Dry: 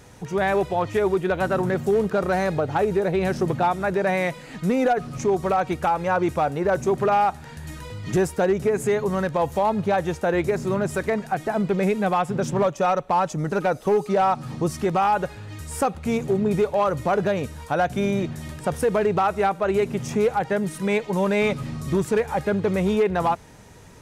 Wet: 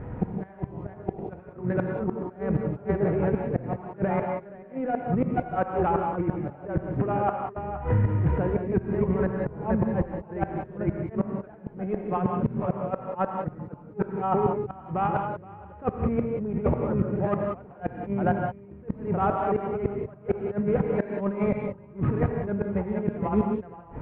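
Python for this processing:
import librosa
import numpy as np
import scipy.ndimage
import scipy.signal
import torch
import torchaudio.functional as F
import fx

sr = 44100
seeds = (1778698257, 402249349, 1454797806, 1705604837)

y = scipy.ndimage.median_filter(x, 15, mode='constant')
y = fx.low_shelf(y, sr, hz=480.0, db=8.5)
y = y + 10.0 ** (-4.5 / 20.0) * np.pad(y, (int(471 * sr / 1000.0), 0))[:len(y)]
y = fx.over_compress(y, sr, threshold_db=-21.0, ratio=-0.5)
y = scipy.signal.sosfilt(scipy.signal.cheby2(4, 40, 4700.0, 'lowpass', fs=sr, output='sos'), y)
y = fx.gate_flip(y, sr, shuts_db=-13.0, range_db=-28)
y = fx.rev_gated(y, sr, seeds[0], gate_ms=210, shape='rising', drr_db=2.5)
y = fx.band_squash(y, sr, depth_pct=70, at=(7.56, 10.06))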